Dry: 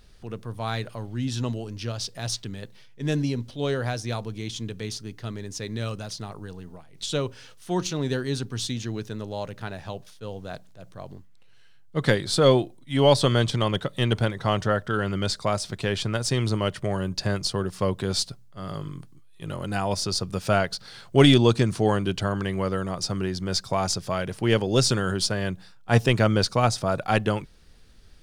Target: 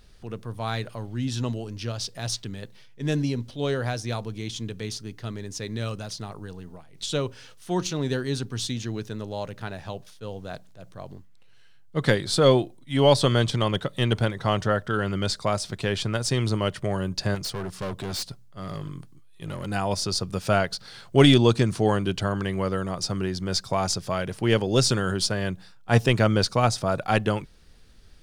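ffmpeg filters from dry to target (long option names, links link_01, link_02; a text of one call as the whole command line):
ffmpeg -i in.wav -filter_complex "[0:a]asettb=1/sr,asplit=3[link_01][link_02][link_03];[link_01]atrim=end=17.354[link_04];[link_02]atrim=start=17.35:end=19.66,asetpts=PTS-STARTPTS,afade=type=in:duration=0.004:curve=qsin,afade=type=out:start_time=2.306:duration=0.004:curve=qsin,asoftclip=type=hard:threshold=-28dB[link_05];[link_03]atrim=start=19.656[link_06];[link_04][link_05]acrossfade=duration=0.004:curve1=hsin:curve2=qsin[link_07];[link_07][link_06]acrossfade=duration=0.004:curve1=qsin:curve2=hsin" out.wav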